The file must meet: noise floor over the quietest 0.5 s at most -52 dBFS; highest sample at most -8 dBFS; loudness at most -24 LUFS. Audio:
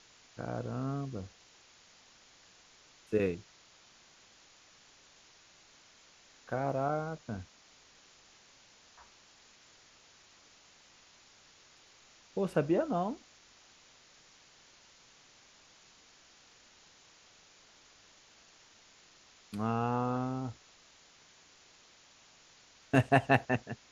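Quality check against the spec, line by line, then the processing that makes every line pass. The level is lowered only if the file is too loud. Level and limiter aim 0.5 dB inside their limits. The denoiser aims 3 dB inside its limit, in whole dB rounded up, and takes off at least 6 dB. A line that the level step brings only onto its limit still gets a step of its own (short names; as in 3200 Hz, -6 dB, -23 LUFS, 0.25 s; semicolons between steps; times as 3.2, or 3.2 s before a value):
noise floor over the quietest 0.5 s -61 dBFS: OK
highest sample -9.5 dBFS: OK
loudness -33.5 LUFS: OK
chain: none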